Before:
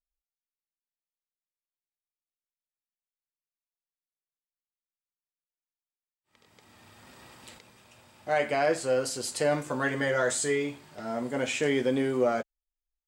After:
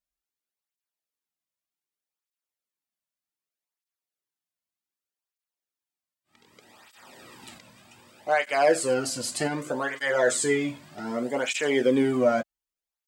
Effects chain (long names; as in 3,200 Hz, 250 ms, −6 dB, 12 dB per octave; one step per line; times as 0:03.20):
0:08.52–0:08.94: parametric band 10,000 Hz +8 dB 0.92 octaves
0:09.47–0:09.96: downward compressor 2 to 1, threshold −29 dBFS, peak gain reduction 5 dB
through-zero flanger with one copy inverted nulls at 0.65 Hz, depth 2.6 ms
level +6 dB